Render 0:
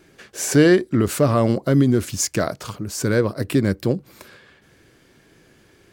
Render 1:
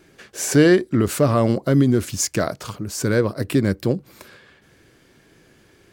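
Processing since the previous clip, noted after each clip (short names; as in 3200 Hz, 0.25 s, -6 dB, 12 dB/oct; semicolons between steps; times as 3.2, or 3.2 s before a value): nothing audible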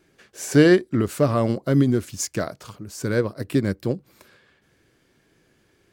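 upward expander 1.5:1, over -27 dBFS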